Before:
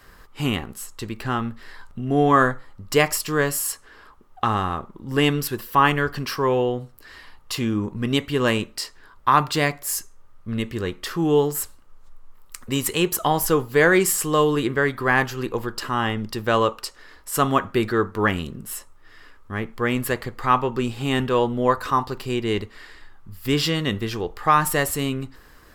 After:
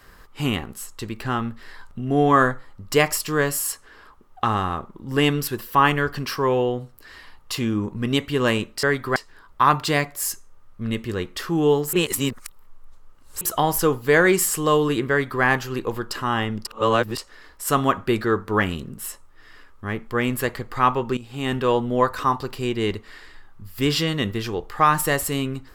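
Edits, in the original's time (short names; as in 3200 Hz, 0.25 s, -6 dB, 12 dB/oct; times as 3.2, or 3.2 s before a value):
11.6–13.08 reverse
14.77–15.1 copy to 8.83
16.32–16.85 reverse
20.84–21.3 fade in, from -15.5 dB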